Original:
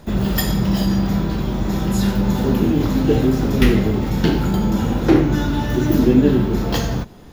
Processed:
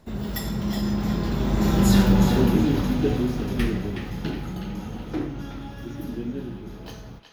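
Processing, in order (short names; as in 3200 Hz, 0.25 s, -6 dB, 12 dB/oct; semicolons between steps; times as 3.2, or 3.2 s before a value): Doppler pass-by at 1.96, 18 m/s, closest 8.1 m; narrowing echo 0.369 s, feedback 49%, band-pass 2500 Hz, level -6 dB; gain +1.5 dB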